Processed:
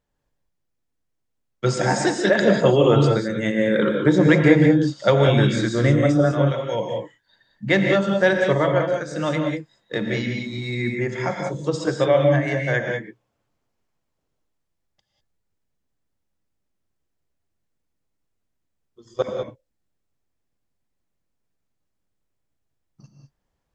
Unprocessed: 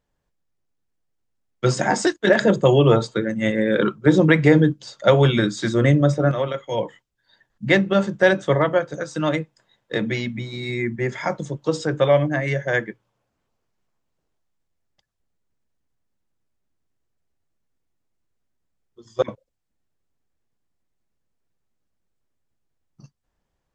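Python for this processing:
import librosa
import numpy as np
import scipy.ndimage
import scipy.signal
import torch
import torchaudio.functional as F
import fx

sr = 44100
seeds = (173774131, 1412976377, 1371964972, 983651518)

y = fx.rev_gated(x, sr, seeds[0], gate_ms=220, shape='rising', drr_db=2.5)
y = F.gain(torch.from_numpy(y), -2.0).numpy()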